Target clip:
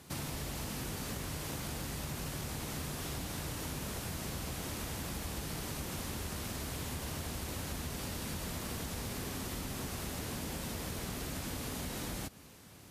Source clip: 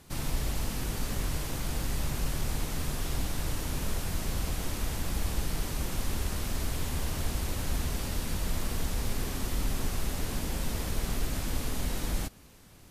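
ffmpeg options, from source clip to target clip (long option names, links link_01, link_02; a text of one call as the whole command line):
ffmpeg -i in.wav -af "highpass=83,acompressor=threshold=-37dB:ratio=6,volume=1dB" out.wav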